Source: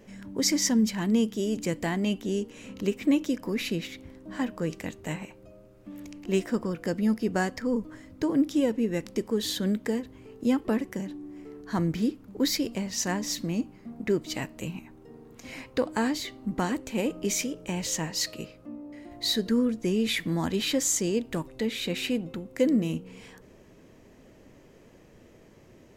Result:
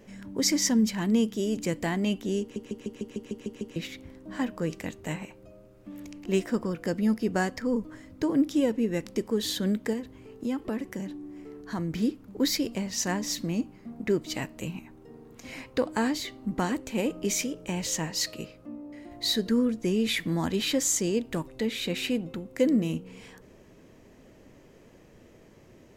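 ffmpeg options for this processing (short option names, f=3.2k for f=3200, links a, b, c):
-filter_complex "[0:a]asettb=1/sr,asplit=3[a][b][c];[a]atrim=end=9.934[d];[b]atrim=start=9.93:end=11.93,asetpts=PTS-STARTPTS,afade=t=in:d=0.004:c=qsin,afade=t=out:st=1.996:d=0.004:c=qsin,acompressor=threshold=-30dB:ratio=2:attack=3.2:release=140:knee=1:detection=peak[e];[c]atrim=start=11.926[f];[d][e]acrossfade=d=0.004:c1=hsin:c2=qsin[g];[g][f]acrossfade=d=0.004:c1=qsin:c2=hsin,asplit=10[h][i][j][k][l][m][n][o][p][q];[h]atrim=end=2.562[r];[i]atrim=start=2.408:end=2.562[s];[j]atrim=start=2.408:end=2.562[t];[k]atrim=start=2.408:end=2.562[u];[l]atrim=start=2.408:end=2.562[v];[m]atrim=start=2.408:end=2.562[w];[n]atrim=start=2.408:end=2.562[x];[o]atrim=start=2.408:end=2.562[y];[p]atrim=start=2.408:end=2.562[z];[q]atrim=start=3.758[aa];[r][s]acrossfade=d=0.004:c1=hsin:c2=hsin[ab];[ab][t]acrossfade=d=0.004:c1=hsin:c2=hsin[ac];[ac][u]acrossfade=d=0.004:c1=hsin:c2=hsin[ad];[ad][v]acrossfade=d=0.004:c1=hsin:c2=hsin[ae];[ae][w]acrossfade=d=0.004:c1=hsin:c2=hsin[af];[af][x]acrossfade=d=0.004:c1=hsin:c2=hsin[ag];[ag][y]acrossfade=d=0.004:c1=hsin:c2=hsin[ah];[ah][z]acrossfade=d=0.004:c1=hsin:c2=hsin[ai];[ai][aa]acrossfade=d=0.004:c1=hsin:c2=hsin"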